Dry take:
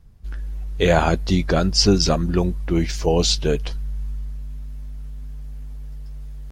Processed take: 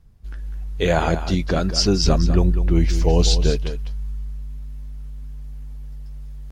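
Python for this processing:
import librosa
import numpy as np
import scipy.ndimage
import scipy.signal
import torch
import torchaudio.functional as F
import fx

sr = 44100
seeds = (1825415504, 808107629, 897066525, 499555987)

p1 = fx.low_shelf(x, sr, hz=130.0, db=10.5, at=(2.04, 3.5))
p2 = p1 + fx.echo_single(p1, sr, ms=199, db=-11.0, dry=0)
y = p2 * 10.0 ** (-2.5 / 20.0)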